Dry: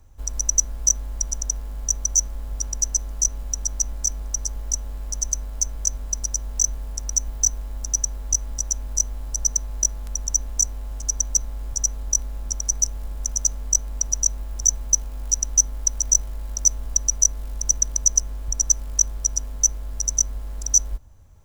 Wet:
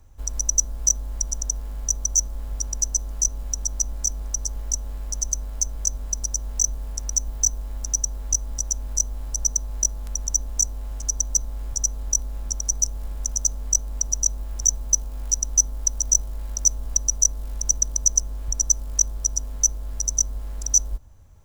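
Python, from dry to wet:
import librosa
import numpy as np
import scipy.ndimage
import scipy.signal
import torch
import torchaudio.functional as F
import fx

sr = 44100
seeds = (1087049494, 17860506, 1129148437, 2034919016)

y = fx.dynamic_eq(x, sr, hz=2100.0, q=1.0, threshold_db=-40.0, ratio=4.0, max_db=-8)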